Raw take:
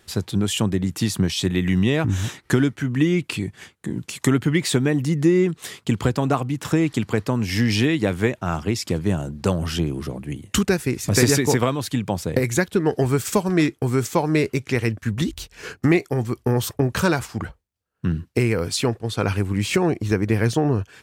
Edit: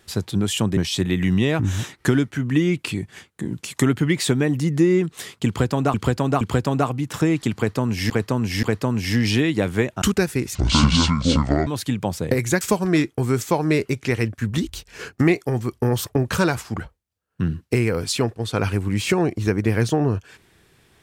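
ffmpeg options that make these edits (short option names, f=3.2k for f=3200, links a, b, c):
-filter_complex "[0:a]asplit=10[a][b][c][d][e][f][g][h][i][j];[a]atrim=end=0.772[k];[b]atrim=start=1.218:end=6.392[l];[c]atrim=start=5.918:end=6.392[m];[d]atrim=start=5.918:end=7.612[n];[e]atrim=start=7.078:end=7.612[o];[f]atrim=start=7.078:end=8.472[p];[g]atrim=start=10.528:end=11.064[q];[h]atrim=start=11.06:end=11.72,asetpts=PTS-STARTPTS,asetrate=26019,aresample=44100,atrim=end_sample=49332,asetpts=PTS-STARTPTS[r];[i]atrim=start=11.716:end=12.662[s];[j]atrim=start=13.248[t];[k][l]acrossfade=d=0.004:c1=hsin:c2=hsin[u];[u][m]acrossfade=d=0.004:c1=hsin:c2=hsin[v];[v][n]acrossfade=d=0.004:c1=hsin:c2=hsin[w];[w][o]acrossfade=d=0.004:c1=hsin:c2=hsin[x];[x][p]acrossfade=d=0.004:c1=hsin:c2=hsin[y];[y][q]acrossfade=d=0.004:c1=hsin:c2=hsin[z];[z][r]acrossfade=d=0.004:c1=hsin:c2=hsin[aa];[aa][s]acrossfade=d=0.004:c1=hsin:c2=hsin[ab];[ab][t]acrossfade=d=0.004:c1=hsin:c2=hsin"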